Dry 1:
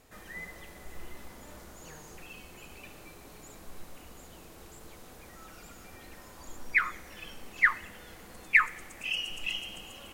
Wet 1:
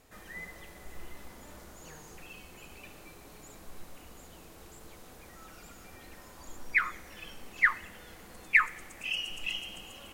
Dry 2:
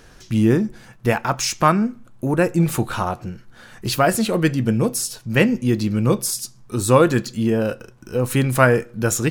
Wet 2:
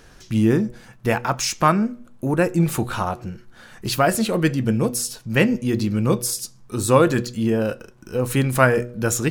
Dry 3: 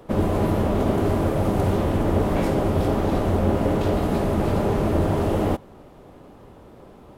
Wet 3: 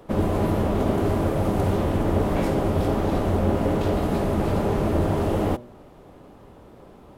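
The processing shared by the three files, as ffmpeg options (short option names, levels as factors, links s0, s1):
-af "bandreject=f=120.9:t=h:w=4,bandreject=f=241.8:t=h:w=4,bandreject=f=362.7:t=h:w=4,bandreject=f=483.6:t=h:w=4,bandreject=f=604.5:t=h:w=4,volume=0.891"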